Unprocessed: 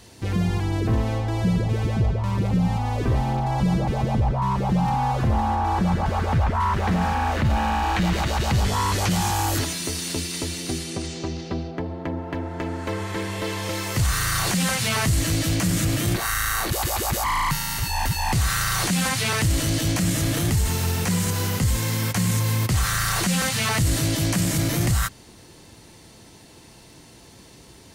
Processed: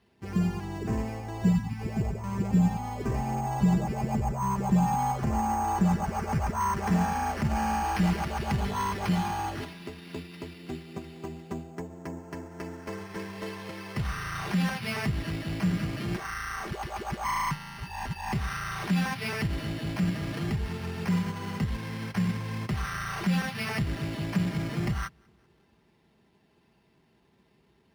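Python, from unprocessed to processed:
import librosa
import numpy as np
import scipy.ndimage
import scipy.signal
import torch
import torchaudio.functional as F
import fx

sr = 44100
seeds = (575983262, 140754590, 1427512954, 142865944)

p1 = fx.spec_erase(x, sr, start_s=1.53, length_s=0.28, low_hz=320.0, high_hz=750.0)
p2 = p1 + 0.48 * np.pad(p1, (int(5.0 * sr / 1000.0), 0))[:len(p1)]
p3 = p2 + fx.echo_feedback(p2, sr, ms=190, feedback_pct=55, wet_db=-23.5, dry=0)
p4 = np.repeat(scipy.signal.resample_poly(p3, 1, 6), 6)[:len(p3)]
p5 = scipy.signal.sosfilt(scipy.signal.butter(2, 57.0, 'highpass', fs=sr, output='sos'), p4)
p6 = fx.high_shelf(p5, sr, hz=7400.0, db=-10.5)
p7 = fx.notch(p6, sr, hz=570.0, q=12.0)
p8 = fx.upward_expand(p7, sr, threshold_db=-42.0, expansion=1.5)
y = p8 * 10.0 ** (-3.0 / 20.0)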